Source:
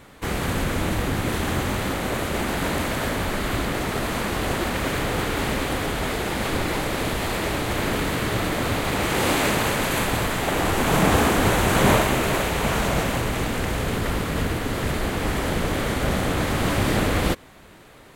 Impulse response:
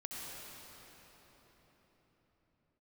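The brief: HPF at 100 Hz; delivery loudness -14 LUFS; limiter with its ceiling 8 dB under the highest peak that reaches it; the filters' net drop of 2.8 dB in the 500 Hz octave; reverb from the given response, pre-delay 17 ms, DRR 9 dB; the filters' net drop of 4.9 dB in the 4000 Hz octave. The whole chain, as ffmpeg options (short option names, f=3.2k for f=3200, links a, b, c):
-filter_complex "[0:a]highpass=100,equalizer=f=500:t=o:g=-3.5,equalizer=f=4k:t=o:g=-6.5,alimiter=limit=-15dB:level=0:latency=1,asplit=2[a][b];[1:a]atrim=start_sample=2205,adelay=17[c];[b][c]afir=irnorm=-1:irlink=0,volume=-9dB[d];[a][d]amix=inputs=2:normalize=0,volume=11.5dB"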